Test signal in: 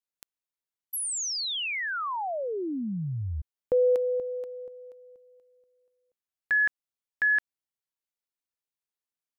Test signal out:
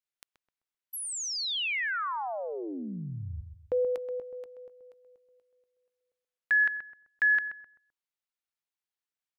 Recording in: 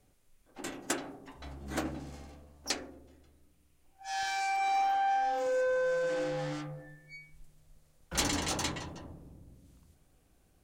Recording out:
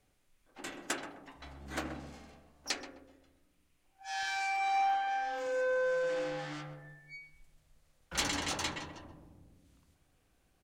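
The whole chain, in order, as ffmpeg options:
-filter_complex "[0:a]equalizer=f=2200:w=0.4:g=7,asplit=2[s0][s1];[s1]adelay=129,lowpass=f=1300:p=1,volume=0.398,asplit=2[s2][s3];[s3]adelay=129,lowpass=f=1300:p=1,volume=0.36,asplit=2[s4][s5];[s5]adelay=129,lowpass=f=1300:p=1,volume=0.36,asplit=2[s6][s7];[s7]adelay=129,lowpass=f=1300:p=1,volume=0.36[s8];[s2][s4][s6][s8]amix=inputs=4:normalize=0[s9];[s0][s9]amix=inputs=2:normalize=0,volume=0.473"

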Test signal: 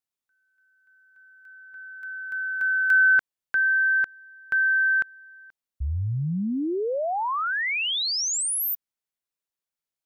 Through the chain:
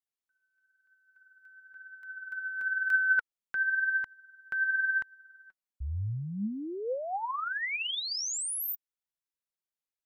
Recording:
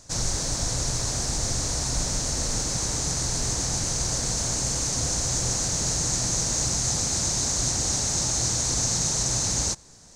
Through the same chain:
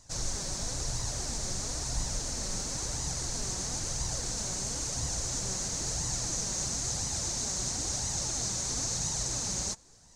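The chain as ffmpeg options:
-af "flanger=delay=1:depth=4.4:regen=47:speed=0.99:shape=sinusoidal,volume=0.668"

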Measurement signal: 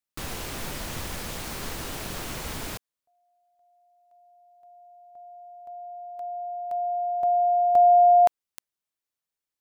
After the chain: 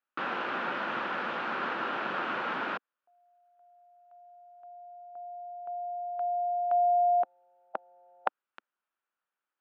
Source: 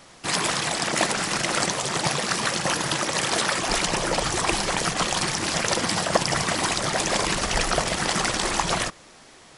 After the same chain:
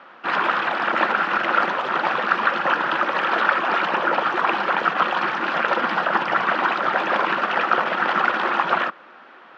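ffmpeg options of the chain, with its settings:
-filter_complex "[0:a]afftfilt=real='re*lt(hypot(re,im),0.631)':imag='im*lt(hypot(re,im),0.631)':win_size=1024:overlap=0.75,asplit=2[s0][s1];[s1]asoftclip=type=hard:threshold=0.1,volume=0.562[s2];[s0][s2]amix=inputs=2:normalize=0,highpass=f=260:w=0.5412,highpass=f=260:w=1.3066,equalizer=f=290:t=q:w=4:g=-7,equalizer=f=430:t=q:w=4:g=-7,equalizer=f=660:t=q:w=4:g=-4,equalizer=f=1400:t=q:w=4:g=7,equalizer=f=2100:t=q:w=4:g=-7,lowpass=f=2500:w=0.5412,lowpass=f=2500:w=1.3066,volume=1.41"

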